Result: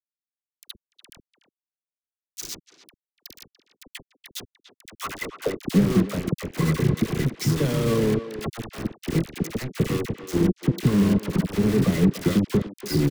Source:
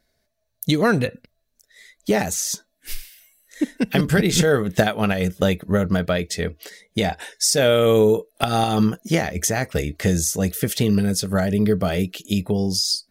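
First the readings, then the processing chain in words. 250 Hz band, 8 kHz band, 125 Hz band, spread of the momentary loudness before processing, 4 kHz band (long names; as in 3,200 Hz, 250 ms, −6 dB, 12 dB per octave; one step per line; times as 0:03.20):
−2.0 dB, −13.0 dB, −1.0 dB, 11 LU, −10.5 dB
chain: low-pass filter 5,900 Hz 12 dB per octave
delay with pitch and tempo change per echo 238 ms, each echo −4 semitones, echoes 3, each echo −6 dB
transient designer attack +10 dB, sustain −6 dB
downward compressor 20 to 1, threshold −18 dBFS, peak gain reduction 17 dB
sample-and-hold tremolo 3.5 Hz, depth 75%
high-pass filter sweep 3,800 Hz → 140 Hz, 0:04.66–0:05.82
hollow resonant body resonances 1,100/2,000 Hz, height 14 dB, ringing for 30 ms
bit reduction 4 bits
soft clipping −14 dBFS, distortion −16 dB
low shelf with overshoot 500 Hz +9.5 dB, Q 1.5
all-pass dispersion lows, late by 53 ms, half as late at 970 Hz
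far-end echo of a speakerphone 290 ms, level −11 dB
level −6 dB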